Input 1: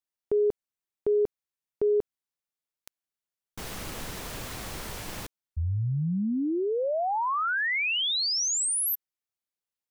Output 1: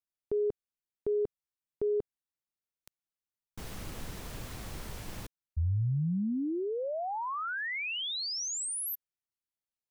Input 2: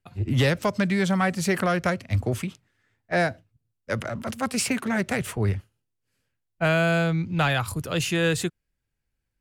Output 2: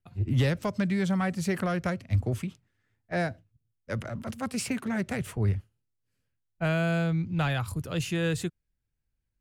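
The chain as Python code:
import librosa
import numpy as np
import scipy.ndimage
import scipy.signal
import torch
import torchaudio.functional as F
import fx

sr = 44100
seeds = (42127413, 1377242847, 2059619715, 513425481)

y = fx.low_shelf(x, sr, hz=250.0, db=8.0)
y = y * 10.0 ** (-8.0 / 20.0)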